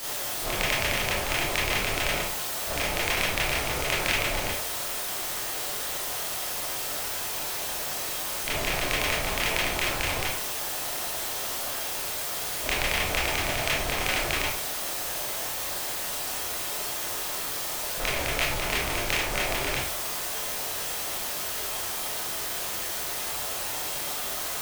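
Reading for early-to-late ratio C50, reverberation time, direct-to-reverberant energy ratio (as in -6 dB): 3.0 dB, 0.45 s, -8.0 dB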